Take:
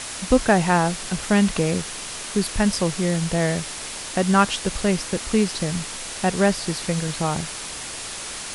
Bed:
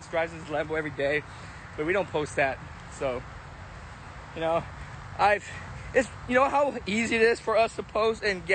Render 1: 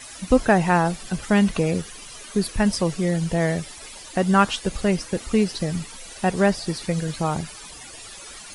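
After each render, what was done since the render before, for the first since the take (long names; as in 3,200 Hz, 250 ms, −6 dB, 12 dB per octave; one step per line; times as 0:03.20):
broadband denoise 14 dB, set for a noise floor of −33 dBFS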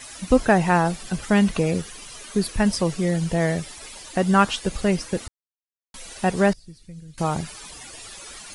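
0:05.28–0:05.94: silence
0:06.53–0:07.18: guitar amp tone stack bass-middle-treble 10-0-1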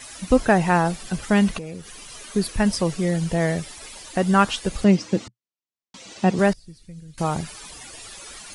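0:01.58–0:02.10: downward compressor 2.5 to 1, threshold −36 dBFS
0:04.84–0:06.39: loudspeaker in its box 120–7,100 Hz, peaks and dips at 120 Hz +6 dB, 200 Hz +7 dB, 310 Hz +7 dB, 1,600 Hz −5 dB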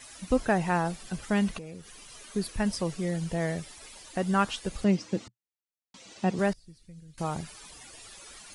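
level −8 dB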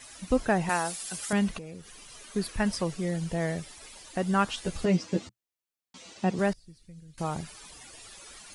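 0:00.69–0:01.33: RIAA equalisation recording
0:02.36–0:02.85: parametric band 1,500 Hz +4 dB 2 octaves
0:04.56–0:06.11: double-tracking delay 12 ms −2 dB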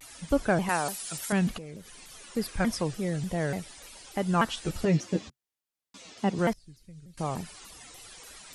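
pitch modulation by a square or saw wave saw down 3.4 Hz, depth 250 cents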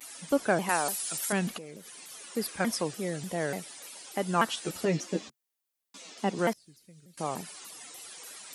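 high-pass filter 230 Hz 12 dB per octave
high-shelf EQ 9,500 Hz +8.5 dB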